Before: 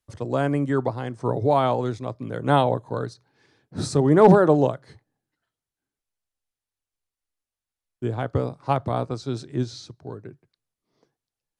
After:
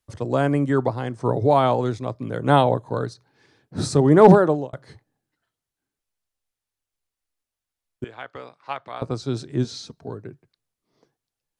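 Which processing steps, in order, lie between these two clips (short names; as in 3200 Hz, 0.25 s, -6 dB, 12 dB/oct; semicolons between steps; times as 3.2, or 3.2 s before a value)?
4.31–4.73 fade out; 8.04–9.02 band-pass 2300 Hz, Q 1.2; 9.64–10.08 comb 4.4 ms, depth 65%; gain +2.5 dB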